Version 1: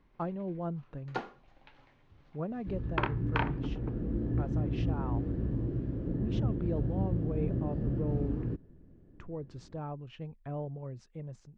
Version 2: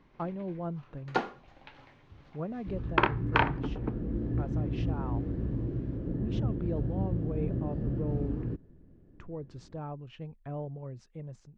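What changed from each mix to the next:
first sound +7.0 dB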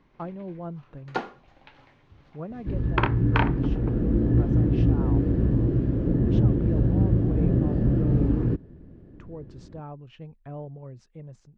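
second sound +10.5 dB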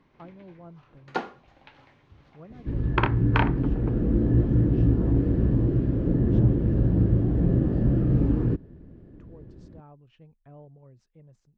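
speech −10.5 dB

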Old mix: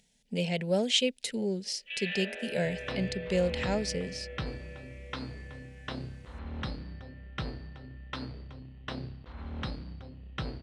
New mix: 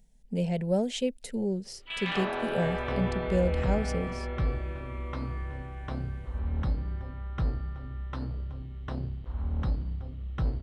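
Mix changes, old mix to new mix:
first sound: remove formant filter e
master: remove meter weighting curve D

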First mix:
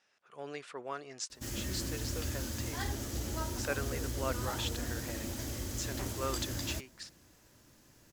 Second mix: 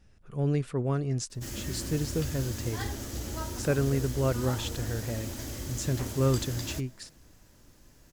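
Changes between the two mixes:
speech: remove band-pass filter 800–6,700 Hz
background: send +8.0 dB

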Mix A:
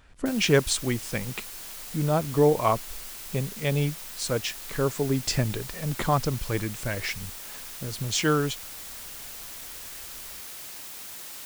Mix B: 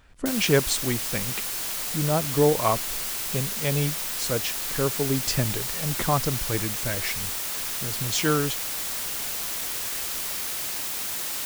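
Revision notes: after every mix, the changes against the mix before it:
background +10.0 dB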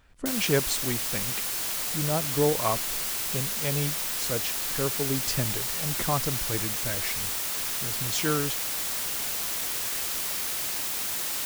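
speech −4.0 dB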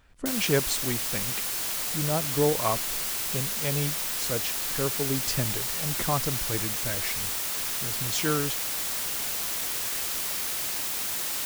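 nothing changed

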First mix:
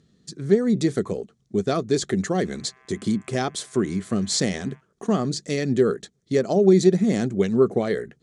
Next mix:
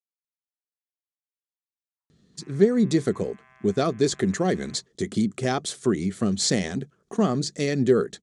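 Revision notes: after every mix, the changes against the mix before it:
speech: entry +2.10 s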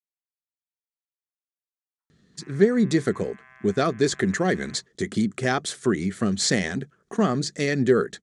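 master: add parametric band 1,700 Hz +7.5 dB 0.86 octaves

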